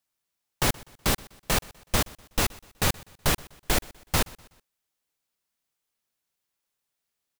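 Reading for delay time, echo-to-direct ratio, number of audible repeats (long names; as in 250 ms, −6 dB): 124 ms, −21.5 dB, 2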